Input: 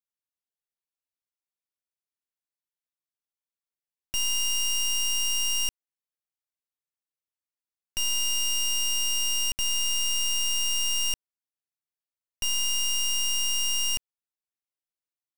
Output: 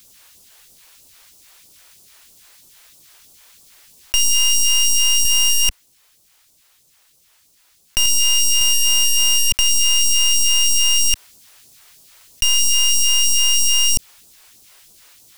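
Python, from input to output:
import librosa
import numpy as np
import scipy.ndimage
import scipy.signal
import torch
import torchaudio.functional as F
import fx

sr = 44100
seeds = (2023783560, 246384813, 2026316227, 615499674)

p1 = fx.phaser_stages(x, sr, stages=2, low_hz=150.0, high_hz=1800.0, hz=3.1, feedback_pct=35)
p2 = fx.leveller(p1, sr, passes=3, at=(5.25, 8.06))
p3 = fx.rider(p2, sr, range_db=10, speed_s=0.5)
p4 = p2 + F.gain(torch.from_numpy(p3), 2.0).numpy()
p5 = fx.leveller(p4, sr, passes=3, at=(8.61, 9.58))
p6 = fx.env_flatten(p5, sr, amount_pct=100)
y = F.gain(torch.from_numpy(p6), -1.5).numpy()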